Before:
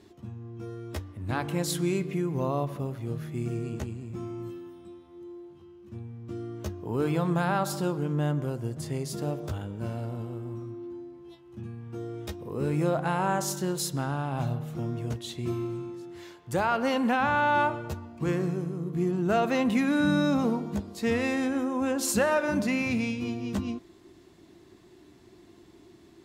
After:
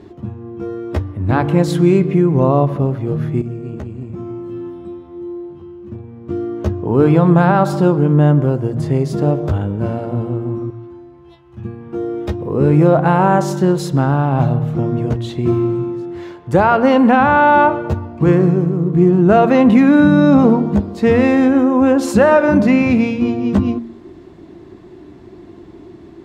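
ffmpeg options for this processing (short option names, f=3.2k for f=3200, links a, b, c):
-filter_complex "[0:a]asettb=1/sr,asplit=3[a][b][c];[a]atrim=end=3.414[d];[b]atrim=start=3.41:end=6.3,asetpts=PTS-STARTPTS,afade=t=in:d=0.004:c=qsin,afade=t=out:st=2.886:d=0.004:c=qsin,acompressor=threshold=-39dB:ratio=6:attack=3.2:release=140:knee=1:detection=peak[e];[c]atrim=start=6.296[f];[d][e]acrossfade=d=0.004:c1=hsin:c2=qsin[g];[g][f]acrossfade=d=0.004:c1=qsin:c2=hsin,asettb=1/sr,asplit=3[h][i][j];[h]atrim=end=10.704[k];[i]atrim=start=10.7:end=11.65,asetpts=PTS-STARTPTS,afade=t=in:d=0.004:c=qsin,afade=t=out:st=0.946:d=0.004:c=qsin,equalizer=f=300:t=o:w=2:g=-13[l];[j]atrim=start=11.646[m];[k][l]acrossfade=d=0.004:c1=hsin:c2=qsin[n];[n][m]acrossfade=d=0.004:c1=qsin:c2=hsin,lowpass=f=1k:p=1,bandreject=f=116.1:t=h:w=4,bandreject=f=232.2:t=h:w=4,alimiter=level_in=17.5dB:limit=-1dB:release=50:level=0:latency=1,volume=-1dB"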